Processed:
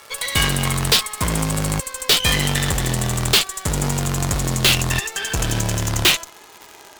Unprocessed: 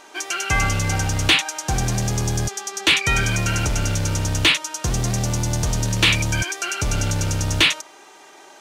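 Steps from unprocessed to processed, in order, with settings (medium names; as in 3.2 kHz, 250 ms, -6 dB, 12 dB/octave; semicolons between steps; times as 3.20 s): gliding tape speed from 143% -> 103%; crackle 240 per s -28 dBFS; Chebyshev shaper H 6 -7 dB, 8 -9 dB, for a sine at -8.5 dBFS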